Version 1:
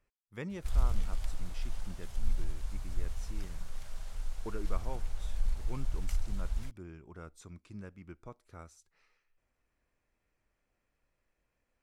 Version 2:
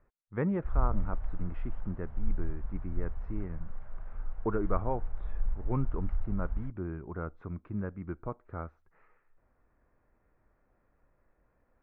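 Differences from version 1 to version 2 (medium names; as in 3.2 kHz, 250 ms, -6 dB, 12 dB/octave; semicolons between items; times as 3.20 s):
speech +10.5 dB; master: add low-pass 1.6 kHz 24 dB/octave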